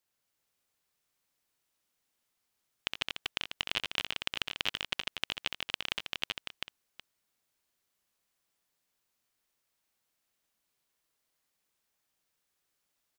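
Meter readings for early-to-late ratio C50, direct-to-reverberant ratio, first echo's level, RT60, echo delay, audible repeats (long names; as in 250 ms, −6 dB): no reverb audible, no reverb audible, −6.0 dB, no reverb audible, 65 ms, 5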